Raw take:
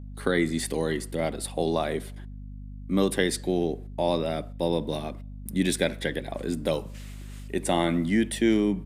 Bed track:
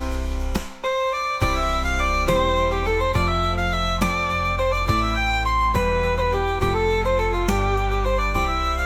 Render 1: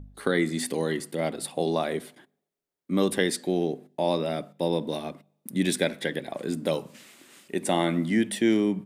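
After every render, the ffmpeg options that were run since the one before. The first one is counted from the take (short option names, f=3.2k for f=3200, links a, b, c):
-af "bandreject=f=50:t=h:w=4,bandreject=f=100:t=h:w=4,bandreject=f=150:t=h:w=4,bandreject=f=200:t=h:w=4,bandreject=f=250:t=h:w=4"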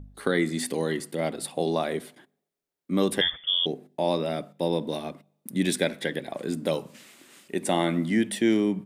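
-filter_complex "[0:a]asettb=1/sr,asplit=3[a][b][c];[a]atrim=end=3.214[d];[b]atrim=start=3.21:end=3.66,asetpts=PTS-STARTPTS,afade=t=in:d=0.004:c=qsin,afade=t=out:st=0.446:d=0.004:c=qsin,lowpass=f=3.1k:t=q:w=0.5098,lowpass=f=3.1k:t=q:w=0.6013,lowpass=f=3.1k:t=q:w=0.9,lowpass=f=3.1k:t=q:w=2.563,afreqshift=-3700[e];[c]atrim=start=3.656[f];[d][e]acrossfade=d=0.004:c1=hsin:c2=qsin[g];[g][f]acrossfade=d=0.004:c1=qsin:c2=hsin"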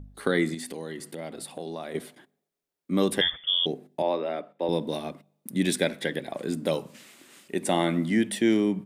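-filter_complex "[0:a]asettb=1/sr,asplit=3[a][b][c];[a]atrim=end=0.544[d];[b]atrim=start=0.54:end=1.95,asetpts=PTS-STARTPTS,afade=t=in:d=0.004:c=qsin,afade=t=out:st=1.406:d=0.004:c=qsin,acompressor=threshold=-36dB:ratio=2.5:attack=3.2:release=140:knee=1:detection=peak[e];[c]atrim=start=1.946[f];[d][e]acrossfade=d=0.004:c1=hsin:c2=qsin[g];[g][f]acrossfade=d=0.004:c1=qsin:c2=hsin,asettb=1/sr,asplit=3[h][i][j];[h]atrim=end=4.024[k];[i]atrim=start=4.02:end=4.69,asetpts=PTS-STARTPTS,afade=t=in:d=0.004:c=qsin,afade=t=out:st=0.666:d=0.004:c=qsin,acrossover=split=280 3100:gain=0.112 1 0.1[l][m][n];[l][m][n]amix=inputs=3:normalize=0[o];[j]atrim=start=4.686[p];[k][o]acrossfade=d=0.004:c1=hsin:c2=qsin[q];[q][p]acrossfade=d=0.004:c1=qsin:c2=hsin"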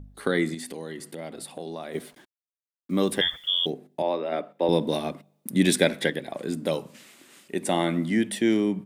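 -filter_complex "[0:a]asettb=1/sr,asplit=3[a][b][c];[a]atrim=end=1.934[d];[b]atrim=start=1.93:end=3.7,asetpts=PTS-STARTPTS,afade=t=in:d=0.004:c=qsin,afade=t=out:st=1.766:d=0.004:c=qsin,acrusher=bits=8:mix=0:aa=0.5[e];[c]atrim=start=3.696[f];[d][e]acrossfade=d=0.004:c1=hsin:c2=qsin[g];[g][f]acrossfade=d=0.004:c1=qsin:c2=hsin,asplit=3[h][i][j];[h]atrim=end=4.322[k];[i]atrim=start=4.318:end=6.102,asetpts=PTS-STARTPTS,volume=4.5dB[l];[j]atrim=start=6.098[m];[k][l]acrossfade=d=0.004:c1=hsin:c2=hsin[n];[n][m]acrossfade=d=0.004:c1=hsin:c2=hsin"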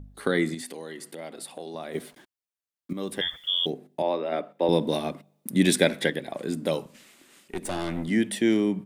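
-filter_complex "[0:a]asettb=1/sr,asplit=3[a][b][c];[a]atrim=end=0.614[d];[b]atrim=start=0.61:end=1.75,asetpts=PTS-STARTPTS,afade=t=in:d=0.004:c=qsin,afade=t=out:st=1.136:d=0.004:c=qsin,highpass=f=320:p=1[e];[c]atrim=start=1.746[f];[d][e]acrossfade=d=0.004:c1=hsin:c2=qsin[g];[g][f]acrossfade=d=0.004:c1=qsin:c2=hsin,asettb=1/sr,asplit=3[h][i][j];[h]atrim=end=6.854[k];[i]atrim=start=6.85:end=8.08,asetpts=PTS-STARTPTS,afade=t=in:d=0.004:c=qsin,afade=t=out:st=1.226:d=0.004:c=qsin,aeval=exprs='(tanh(17.8*val(0)+0.6)-tanh(0.6))/17.8':c=same[l];[j]atrim=start=8.076[m];[k][l]acrossfade=d=0.004:c1=hsin:c2=qsin[n];[n][m]acrossfade=d=0.004:c1=qsin:c2=hsin,asplit=2[o][p];[o]atrim=end=2.93,asetpts=PTS-STARTPTS,afade=t=out:st=2.926:d=0.004:c=hsin:silence=0.223872[q];[p]atrim=start=2.93,asetpts=PTS-STARTPTS,afade=t=in:d=0.96:c=qsin:silence=0.223872[r];[q][r]concat=n=2:v=0:a=1"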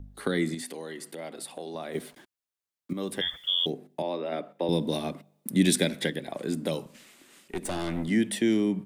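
-filter_complex "[0:a]acrossover=split=320|3000[a][b][c];[b]acompressor=threshold=-31dB:ratio=3[d];[a][d][c]amix=inputs=3:normalize=0"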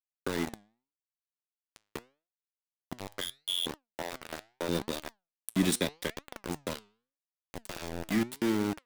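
-af "aeval=exprs='val(0)*gte(abs(val(0)),0.0596)':c=same,flanger=delay=3.1:depth=6.8:regen=87:speed=0.8:shape=triangular"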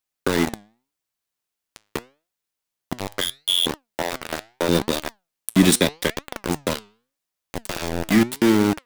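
-af "volume=12dB,alimiter=limit=-3dB:level=0:latency=1"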